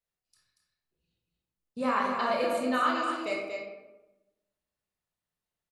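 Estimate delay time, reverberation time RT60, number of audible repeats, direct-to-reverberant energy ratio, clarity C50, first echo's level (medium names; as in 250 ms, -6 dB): 234 ms, 1.1 s, 1, -4.0 dB, 0.5 dB, -6.5 dB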